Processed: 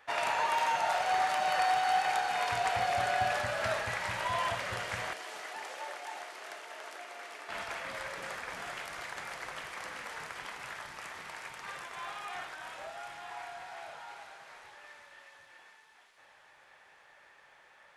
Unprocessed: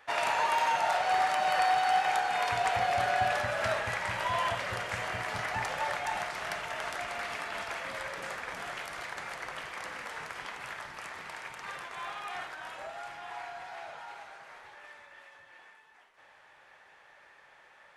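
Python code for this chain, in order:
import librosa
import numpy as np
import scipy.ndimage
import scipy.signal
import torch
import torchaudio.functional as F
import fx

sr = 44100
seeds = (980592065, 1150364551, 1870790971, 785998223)

y = fx.ladder_highpass(x, sr, hz=290.0, resonance_pct=40, at=(5.13, 7.49))
y = fx.echo_wet_highpass(y, sr, ms=396, feedback_pct=75, hz=4000.0, wet_db=-5)
y = F.gain(torch.from_numpy(y), -2.0).numpy()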